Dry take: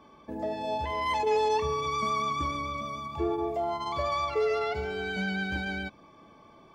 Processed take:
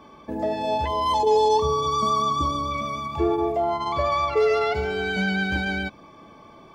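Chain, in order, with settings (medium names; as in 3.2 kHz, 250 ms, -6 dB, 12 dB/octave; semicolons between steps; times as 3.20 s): 0.88–2.71 s: time-frequency box 1.2–3 kHz -17 dB; 3.52–4.37 s: treble shelf 3.7 kHz -6.5 dB; trim +7 dB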